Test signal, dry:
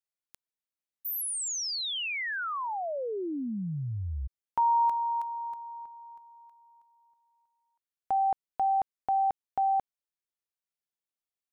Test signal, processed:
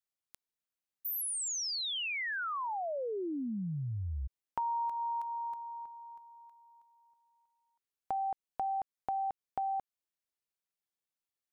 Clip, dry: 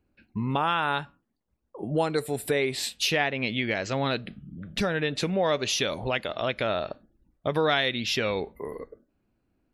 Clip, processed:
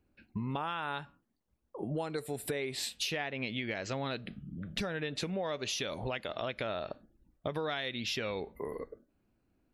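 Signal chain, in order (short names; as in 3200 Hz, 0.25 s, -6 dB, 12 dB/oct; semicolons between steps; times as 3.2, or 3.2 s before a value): compressor 4:1, threshold -32 dBFS; gain -1.5 dB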